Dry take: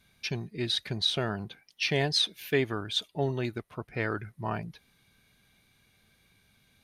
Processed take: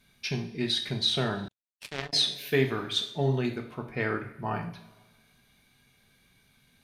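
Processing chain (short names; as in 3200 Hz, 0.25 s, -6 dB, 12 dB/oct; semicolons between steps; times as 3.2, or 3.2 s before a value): two-slope reverb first 0.46 s, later 1.6 s, from -17 dB, DRR 3.5 dB; 1.48–2.13 power-law curve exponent 3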